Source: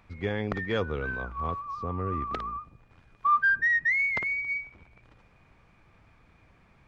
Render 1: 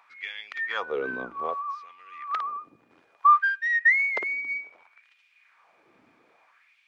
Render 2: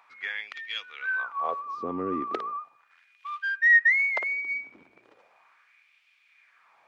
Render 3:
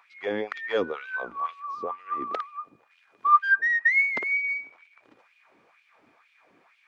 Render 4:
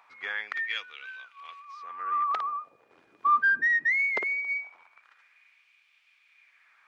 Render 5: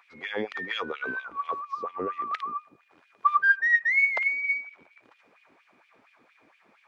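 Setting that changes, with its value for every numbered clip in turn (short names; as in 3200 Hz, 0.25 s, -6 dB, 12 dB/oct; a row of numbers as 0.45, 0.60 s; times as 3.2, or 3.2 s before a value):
LFO high-pass, rate: 0.62, 0.37, 2.1, 0.21, 4.3 Hz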